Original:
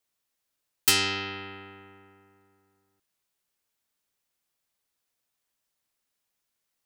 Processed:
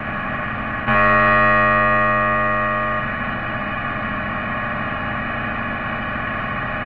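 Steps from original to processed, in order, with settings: per-bin compression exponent 0.2; notch 520 Hz, Q 12; sample leveller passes 3; on a send: feedback echo 70 ms, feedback 35%, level -4 dB; on the sum: mistuned SSB -170 Hz 160–2100 Hz; gain +5.5 dB; Opus 20 kbps 48000 Hz

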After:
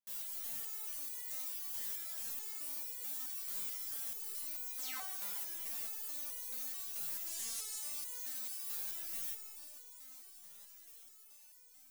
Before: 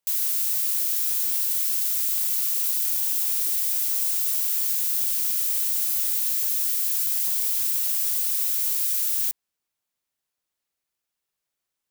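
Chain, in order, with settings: 4.78–5.04 painted sound fall 430–10000 Hz -26 dBFS; 7.26–7.79 weighting filter ITU-R 468; soft clip -28 dBFS, distortion -8 dB; on a send: diffused feedback echo 0.916 s, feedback 68%, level -14 dB; on the sum: Schroeder reverb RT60 2.2 s, combs from 27 ms, DRR 2 dB; stepped resonator 4.6 Hz 200–490 Hz

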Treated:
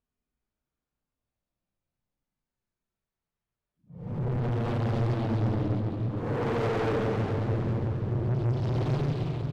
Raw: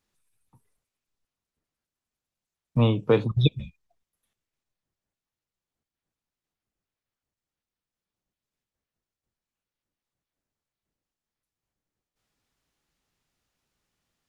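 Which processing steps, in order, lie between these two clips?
LPF 1500 Hz 6 dB/oct; low shelf 230 Hz +6 dB; tempo 1.5×; hard clip -18 dBFS, distortion -8 dB; Paulstretch 9.8×, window 0.10 s, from 1.4; soft clip -27.5 dBFS, distortion -6 dB; split-band echo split 310 Hz, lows 0.6 s, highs 0.403 s, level -6.5 dB; Doppler distortion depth 0.66 ms; gain +1.5 dB

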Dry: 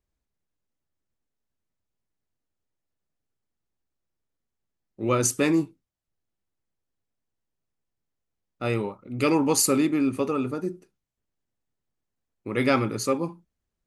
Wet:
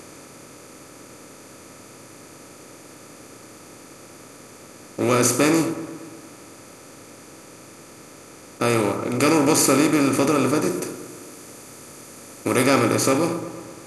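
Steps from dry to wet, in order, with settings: per-bin compression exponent 0.4; 10.7–12.63 high shelf 7000 Hz +7.5 dB; dark delay 0.117 s, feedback 64%, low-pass 1700 Hz, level -12 dB

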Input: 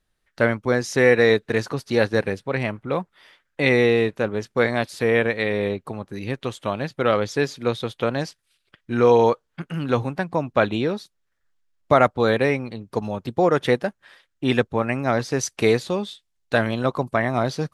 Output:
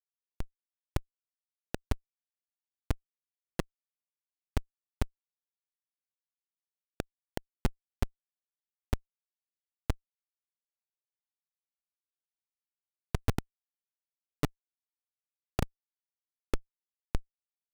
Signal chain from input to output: speakerphone echo 0.24 s, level -18 dB; flipped gate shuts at -15 dBFS, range -25 dB; Schmitt trigger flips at -21.5 dBFS; gain +15 dB

